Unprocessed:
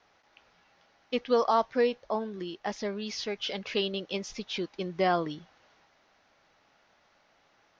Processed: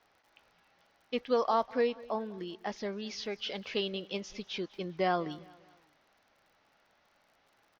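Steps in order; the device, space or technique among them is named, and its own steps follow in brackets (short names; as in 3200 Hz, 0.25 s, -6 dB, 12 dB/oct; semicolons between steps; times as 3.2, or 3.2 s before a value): lo-fi chain (LPF 6200 Hz; wow and flutter 24 cents; crackle 57/s -52 dBFS); feedback echo 0.199 s, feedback 44%, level -21.5 dB; gain -3.5 dB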